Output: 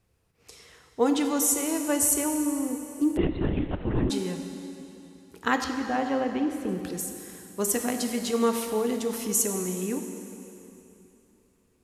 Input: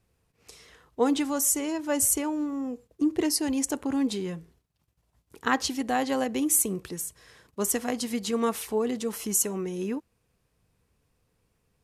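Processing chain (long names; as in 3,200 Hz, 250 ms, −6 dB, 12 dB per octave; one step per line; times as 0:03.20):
floating-point word with a short mantissa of 6 bits
0:05.64–0:06.69: high-frequency loss of the air 360 metres
dense smooth reverb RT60 3 s, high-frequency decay 0.95×, DRR 5 dB
0:03.17–0:04.10: linear-prediction vocoder at 8 kHz whisper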